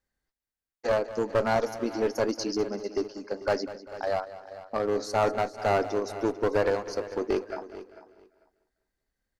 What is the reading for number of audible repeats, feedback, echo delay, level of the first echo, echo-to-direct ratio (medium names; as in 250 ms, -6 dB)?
6, no regular repeats, 197 ms, -15.0 dB, -11.5 dB